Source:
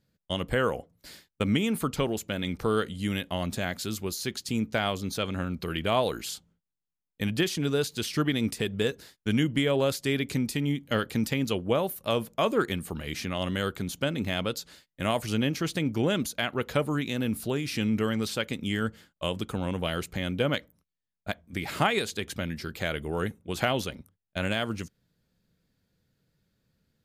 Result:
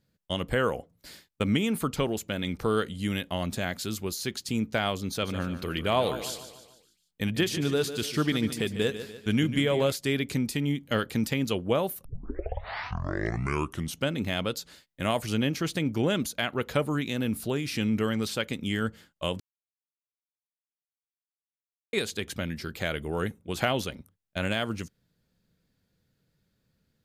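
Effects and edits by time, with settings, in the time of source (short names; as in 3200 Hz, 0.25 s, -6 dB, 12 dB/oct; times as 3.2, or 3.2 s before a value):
5.07–9.92 feedback echo 0.147 s, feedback 47%, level -11.5 dB
12.05 tape start 2.02 s
19.4–21.93 mute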